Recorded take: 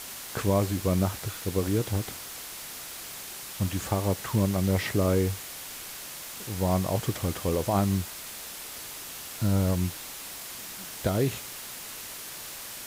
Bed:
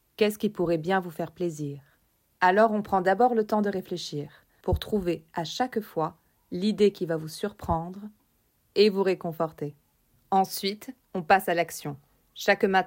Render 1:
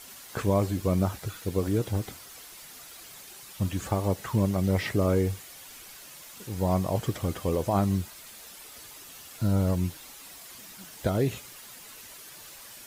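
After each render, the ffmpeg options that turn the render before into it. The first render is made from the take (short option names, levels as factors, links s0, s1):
-af "afftdn=nr=9:nf=-41"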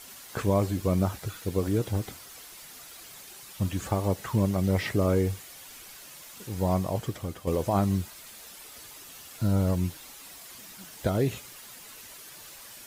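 -filter_complex "[0:a]asplit=2[s0][s1];[s0]atrim=end=7.47,asetpts=PTS-STARTPTS,afade=t=out:st=6.67:d=0.8:silence=0.398107[s2];[s1]atrim=start=7.47,asetpts=PTS-STARTPTS,afade=t=in:d=0.004:c=hsin:silence=0.398107[s3];[s2][s3]concat=n=2:v=0:a=1"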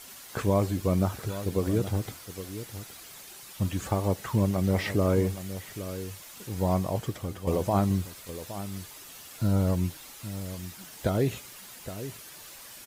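-filter_complex "[0:a]asplit=2[s0][s1];[s1]adelay=816.3,volume=0.251,highshelf=f=4000:g=-18.4[s2];[s0][s2]amix=inputs=2:normalize=0"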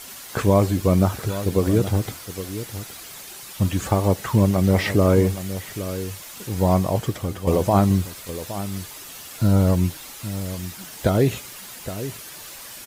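-af "volume=2.37"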